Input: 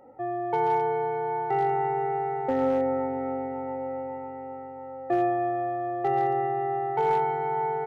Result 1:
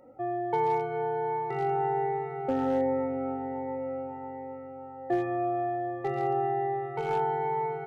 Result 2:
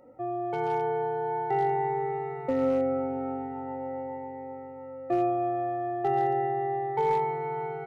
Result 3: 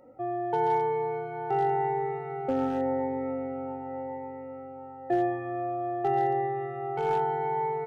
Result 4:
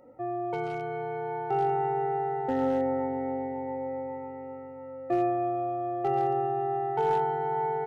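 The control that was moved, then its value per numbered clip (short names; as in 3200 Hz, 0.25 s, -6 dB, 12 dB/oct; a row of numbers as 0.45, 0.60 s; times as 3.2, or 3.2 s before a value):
cascading phaser, rate: 1.3, 0.4, 0.89, 0.2 Hz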